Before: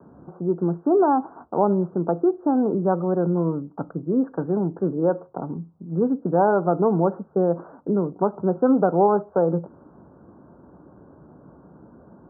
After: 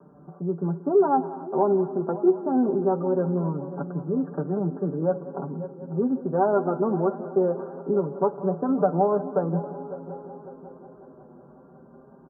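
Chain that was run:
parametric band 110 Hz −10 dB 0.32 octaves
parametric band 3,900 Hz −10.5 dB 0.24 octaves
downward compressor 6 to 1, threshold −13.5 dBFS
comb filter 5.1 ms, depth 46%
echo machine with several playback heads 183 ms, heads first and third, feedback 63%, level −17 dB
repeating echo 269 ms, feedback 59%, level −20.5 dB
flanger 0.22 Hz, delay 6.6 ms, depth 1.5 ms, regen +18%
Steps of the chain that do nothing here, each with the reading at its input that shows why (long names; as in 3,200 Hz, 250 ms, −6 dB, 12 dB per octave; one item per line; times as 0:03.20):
parametric band 3,900 Hz: nothing at its input above 1,500 Hz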